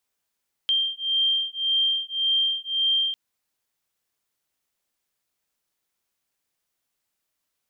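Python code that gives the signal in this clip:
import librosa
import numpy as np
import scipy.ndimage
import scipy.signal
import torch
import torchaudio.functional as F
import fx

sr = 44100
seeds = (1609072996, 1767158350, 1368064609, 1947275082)

y = fx.two_tone_beats(sr, length_s=2.45, hz=3170.0, beat_hz=1.8, level_db=-24.0)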